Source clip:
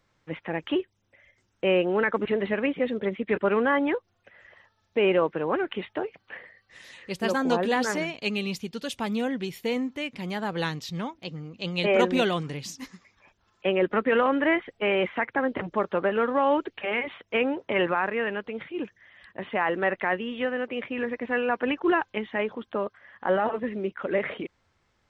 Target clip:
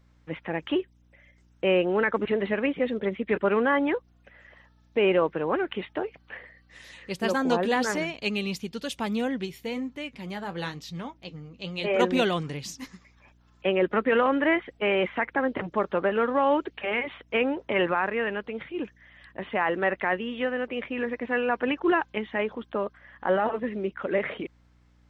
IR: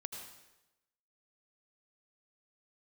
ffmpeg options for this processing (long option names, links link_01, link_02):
-filter_complex "[0:a]asplit=3[link_01][link_02][link_03];[link_01]afade=type=out:start_time=9.45:duration=0.02[link_04];[link_02]flanger=delay=6.8:depth=4.7:regen=-56:speed=1:shape=sinusoidal,afade=type=in:start_time=9.45:duration=0.02,afade=type=out:start_time=11.99:duration=0.02[link_05];[link_03]afade=type=in:start_time=11.99:duration=0.02[link_06];[link_04][link_05][link_06]amix=inputs=3:normalize=0,aeval=exprs='val(0)+0.00112*(sin(2*PI*60*n/s)+sin(2*PI*2*60*n/s)/2+sin(2*PI*3*60*n/s)/3+sin(2*PI*4*60*n/s)/4+sin(2*PI*5*60*n/s)/5)':channel_layout=same"